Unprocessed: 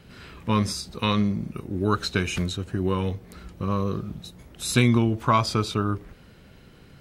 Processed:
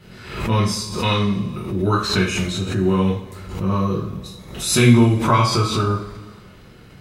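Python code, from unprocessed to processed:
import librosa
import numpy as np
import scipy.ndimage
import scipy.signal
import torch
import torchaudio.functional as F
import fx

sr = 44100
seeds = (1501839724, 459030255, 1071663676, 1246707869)

y = fx.rev_double_slope(x, sr, seeds[0], early_s=0.43, late_s=2.0, knee_db=-19, drr_db=-7.5)
y = fx.pre_swell(y, sr, db_per_s=78.0)
y = y * librosa.db_to_amplitude(-2.5)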